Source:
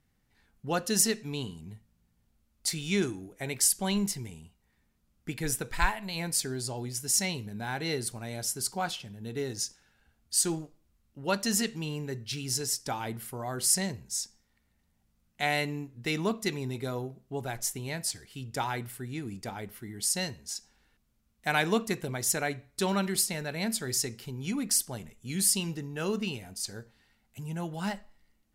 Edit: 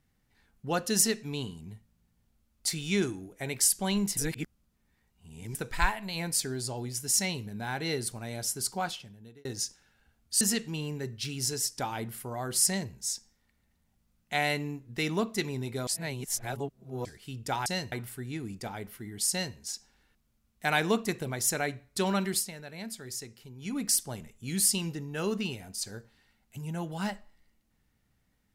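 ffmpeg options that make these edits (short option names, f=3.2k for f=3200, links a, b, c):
-filter_complex "[0:a]asplit=11[a][b][c][d][e][f][g][h][i][j][k];[a]atrim=end=4.172[l];[b]atrim=start=4.168:end=5.552,asetpts=PTS-STARTPTS,areverse[m];[c]atrim=start=5.548:end=9.45,asetpts=PTS-STARTPTS,afade=t=out:st=3.242:d=0.66[n];[d]atrim=start=9.45:end=10.412,asetpts=PTS-STARTPTS,afade=t=in:d=0.004:c=hsin[o];[e]atrim=start=11.488:end=16.952[p];[f]atrim=start=16.948:end=18.132,asetpts=PTS-STARTPTS,areverse[q];[g]atrim=start=18.128:end=18.742[r];[h]atrim=start=20.118:end=20.382[s];[i]atrim=start=18.738:end=23.34,asetpts=PTS-STARTPTS,afade=t=out:st=4.382:d=0.22:silence=0.354813[t];[j]atrim=start=23.34:end=24.41,asetpts=PTS-STARTPTS,volume=-9dB[u];[k]atrim=start=24.41,asetpts=PTS-STARTPTS,afade=t=in:d=0.22:silence=0.354813[v];[l][m]acrossfade=d=0.004:c1=hsin:c2=hsin[w];[n][o]concat=n=2:v=0:a=1[x];[w][x]acrossfade=d=0.004:c1=hsin:c2=hsin[y];[y][p]acrossfade=d=0.004:c1=hsin:c2=hsin[z];[z][q]acrossfade=d=0.004:c1=hsin:c2=hsin[aa];[aa][r]acrossfade=d=0.004:c1=hsin:c2=hsin[ab];[ab][s]acrossfade=d=0.004:c1=hsin:c2=hsin[ac];[t][u][v]concat=n=3:v=0:a=1[ad];[ac][ad]acrossfade=d=0.004:c1=hsin:c2=hsin"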